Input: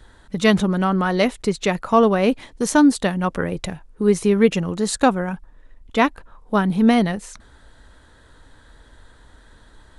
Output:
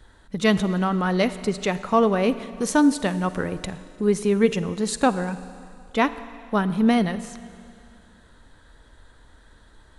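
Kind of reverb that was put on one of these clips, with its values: Schroeder reverb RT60 2.4 s, DRR 13.5 dB; gain -3.5 dB

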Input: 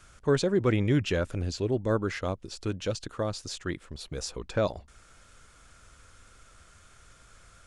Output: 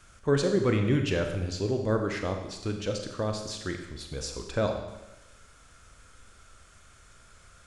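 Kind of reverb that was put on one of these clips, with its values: Schroeder reverb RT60 1 s, combs from 29 ms, DRR 4 dB; gain -1 dB

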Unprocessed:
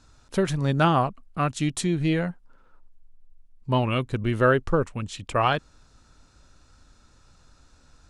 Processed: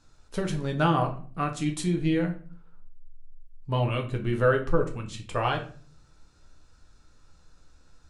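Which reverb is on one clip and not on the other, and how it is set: shoebox room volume 34 m³, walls mixed, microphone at 0.43 m; gain -6 dB

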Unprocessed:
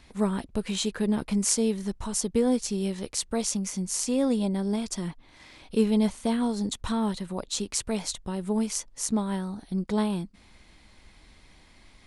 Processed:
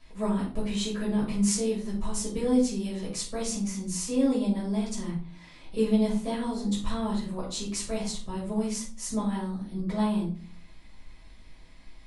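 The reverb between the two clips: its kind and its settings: shoebox room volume 330 m³, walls furnished, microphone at 5.8 m; gain -11.5 dB

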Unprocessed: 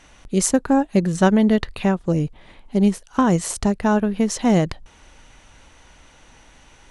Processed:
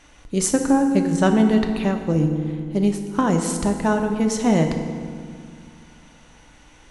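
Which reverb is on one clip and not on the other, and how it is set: FDN reverb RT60 2.1 s, low-frequency decay 1.35×, high-frequency decay 0.65×, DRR 4 dB; gain -2 dB

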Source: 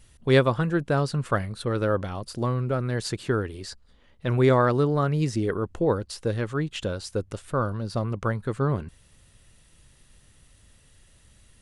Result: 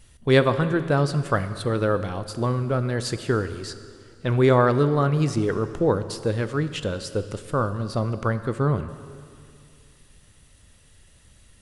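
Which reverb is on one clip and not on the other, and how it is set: plate-style reverb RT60 2.4 s, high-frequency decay 0.95×, DRR 11 dB; gain +2 dB

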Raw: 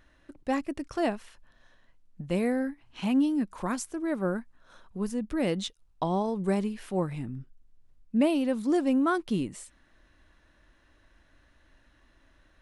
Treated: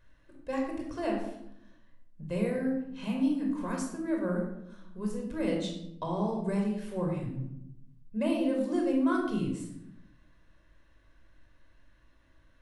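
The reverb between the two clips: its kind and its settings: shoebox room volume 2100 m³, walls furnished, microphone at 5.2 m; gain -9 dB

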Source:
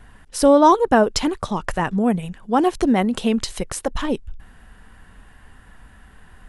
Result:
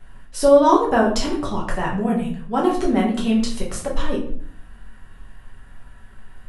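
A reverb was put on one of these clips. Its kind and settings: shoebox room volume 69 m³, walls mixed, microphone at 1.1 m; gain -6.5 dB

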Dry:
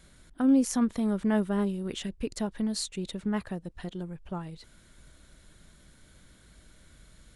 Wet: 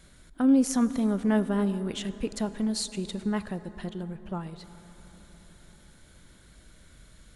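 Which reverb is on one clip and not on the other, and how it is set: plate-style reverb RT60 4.7 s, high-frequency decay 0.4×, DRR 13 dB; gain +1.5 dB

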